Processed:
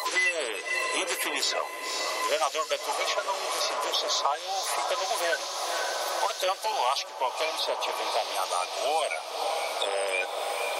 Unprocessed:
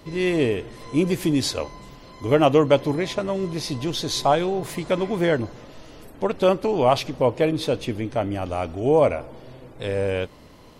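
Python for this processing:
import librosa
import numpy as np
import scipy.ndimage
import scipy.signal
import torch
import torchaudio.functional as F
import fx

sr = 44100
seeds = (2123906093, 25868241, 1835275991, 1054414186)

y = fx.spec_quant(x, sr, step_db=30)
y = scipy.signal.sosfilt(scipy.signal.butter(4, 700.0, 'highpass', fs=sr, output='sos'), y)
y = fx.high_shelf(y, sr, hz=4800.0, db=8.5)
y = fx.echo_diffused(y, sr, ms=524, feedback_pct=70, wet_db=-11.5)
y = fx.band_squash(y, sr, depth_pct=100)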